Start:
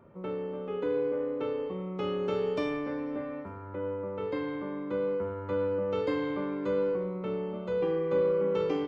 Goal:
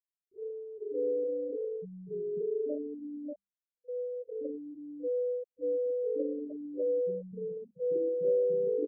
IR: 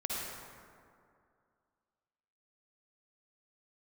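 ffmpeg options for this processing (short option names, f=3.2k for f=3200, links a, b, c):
-filter_complex "[0:a]afftfilt=real='re*gte(hypot(re,im),0.141)':imag='im*gte(hypot(re,im),0.141)':win_size=1024:overlap=0.75,bandreject=f=50:t=h:w=6,bandreject=f=100:t=h:w=6,bandreject=f=150:t=h:w=6,bandreject=f=200:t=h:w=6,acrossover=split=250|3900[a][b][c];[a]adelay=80[d];[b]adelay=120[e];[d][e][c]amix=inputs=3:normalize=0"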